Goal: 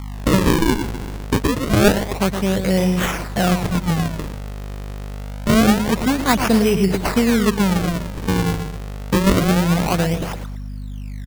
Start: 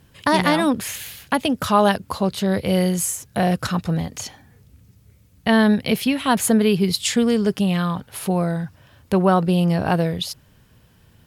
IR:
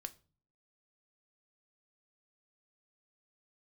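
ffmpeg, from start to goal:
-af "aecho=1:1:116|232|348:0.398|0.115|0.0335,aeval=exprs='val(0)+0.0355*(sin(2*PI*50*n/s)+sin(2*PI*2*50*n/s)/2+sin(2*PI*3*50*n/s)/3+sin(2*PI*4*50*n/s)/4+sin(2*PI*5*50*n/s)/5)':channel_layout=same,acrusher=samples=40:mix=1:aa=0.000001:lfo=1:lforange=64:lforate=0.26,volume=1dB"

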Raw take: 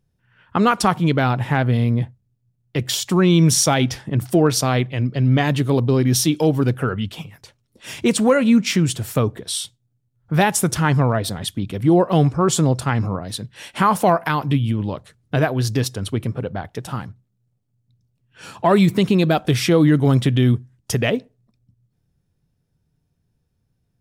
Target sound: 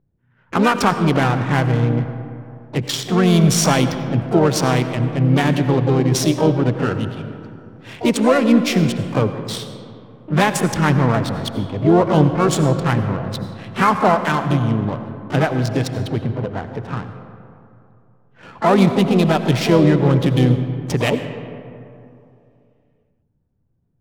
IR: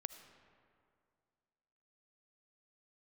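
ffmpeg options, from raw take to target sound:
-filter_complex "[0:a]asplit=3[link_01][link_02][link_03];[link_02]asetrate=55563,aresample=44100,atempo=0.793701,volume=-8dB[link_04];[link_03]asetrate=88200,aresample=44100,atempo=0.5,volume=-12dB[link_05];[link_01][link_04][link_05]amix=inputs=3:normalize=0,adynamicsmooth=sensitivity=3:basefreq=1300[link_06];[1:a]atrim=start_sample=2205,asetrate=36603,aresample=44100[link_07];[link_06][link_07]afir=irnorm=-1:irlink=0,volume=3dB"

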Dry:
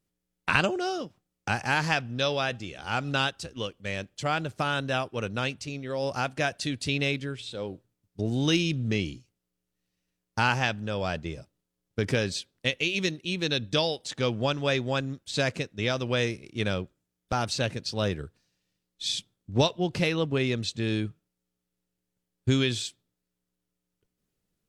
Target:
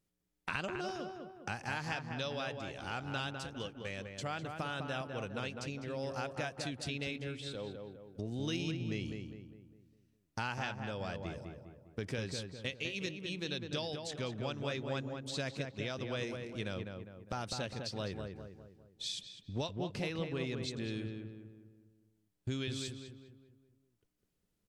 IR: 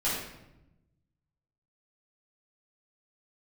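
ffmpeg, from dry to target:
-filter_complex "[0:a]acompressor=threshold=-40dB:ratio=2,asplit=2[link_01][link_02];[link_02]adelay=203,lowpass=frequency=1800:poles=1,volume=-4.5dB,asplit=2[link_03][link_04];[link_04]adelay=203,lowpass=frequency=1800:poles=1,volume=0.48,asplit=2[link_05][link_06];[link_06]adelay=203,lowpass=frequency=1800:poles=1,volume=0.48,asplit=2[link_07][link_08];[link_08]adelay=203,lowpass=frequency=1800:poles=1,volume=0.48,asplit=2[link_09][link_10];[link_10]adelay=203,lowpass=frequency=1800:poles=1,volume=0.48,asplit=2[link_11][link_12];[link_12]adelay=203,lowpass=frequency=1800:poles=1,volume=0.48[link_13];[link_01][link_03][link_05][link_07][link_09][link_11][link_13]amix=inputs=7:normalize=0,volume=-3dB"

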